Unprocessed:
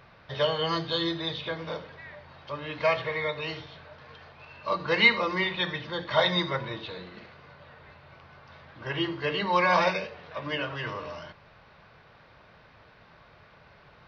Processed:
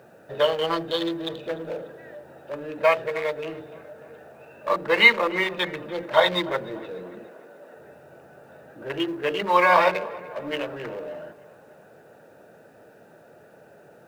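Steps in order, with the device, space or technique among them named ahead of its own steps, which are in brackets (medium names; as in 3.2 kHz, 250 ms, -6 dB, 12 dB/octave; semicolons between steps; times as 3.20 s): local Wiener filter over 41 samples; phone line with mismatched companding (band-pass 330–3300 Hz; companding laws mixed up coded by mu); 7.27–7.76 s: high-pass 210 Hz 24 dB/octave; tape echo 294 ms, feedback 57%, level -19 dB, low-pass 2.7 kHz; trim +6 dB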